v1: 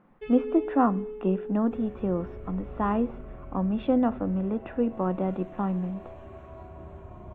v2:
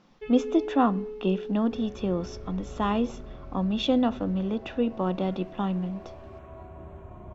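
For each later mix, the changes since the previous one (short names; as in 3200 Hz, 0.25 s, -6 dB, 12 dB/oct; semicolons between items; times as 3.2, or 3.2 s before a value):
speech: remove LPF 2000 Hz 24 dB/oct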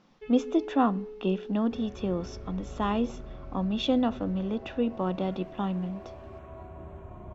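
first sound -3.5 dB; reverb: off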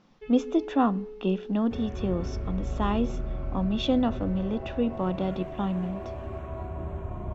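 second sound +6.5 dB; master: add low shelf 140 Hz +5 dB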